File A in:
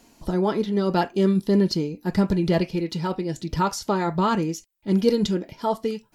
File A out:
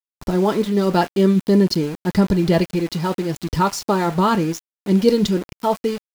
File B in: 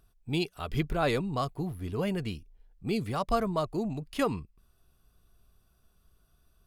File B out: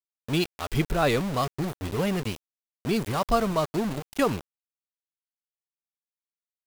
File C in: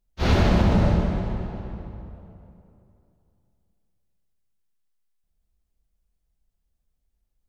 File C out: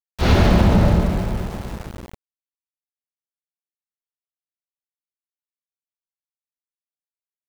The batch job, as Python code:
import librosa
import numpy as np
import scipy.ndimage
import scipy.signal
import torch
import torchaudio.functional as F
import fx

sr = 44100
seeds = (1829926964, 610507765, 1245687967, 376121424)

y = np.where(np.abs(x) >= 10.0 ** (-34.5 / 20.0), x, 0.0)
y = F.gain(torch.from_numpy(y), 4.5).numpy()